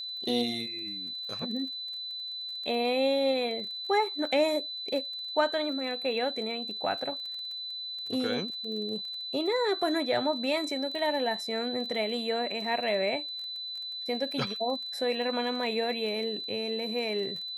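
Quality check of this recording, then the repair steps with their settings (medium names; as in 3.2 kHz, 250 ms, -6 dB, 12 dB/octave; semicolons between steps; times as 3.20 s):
crackle 22 per s -38 dBFS
whine 4 kHz -35 dBFS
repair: de-click; band-stop 4 kHz, Q 30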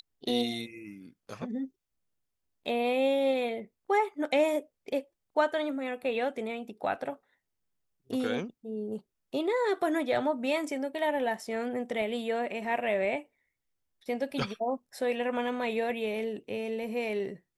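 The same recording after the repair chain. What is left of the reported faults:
nothing left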